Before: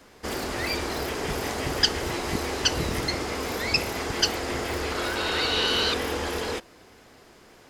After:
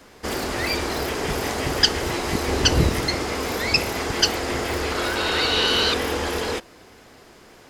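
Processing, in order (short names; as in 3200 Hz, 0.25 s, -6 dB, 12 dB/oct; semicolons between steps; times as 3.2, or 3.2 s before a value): 2.48–2.89 low shelf 320 Hz +9 dB; gain +4 dB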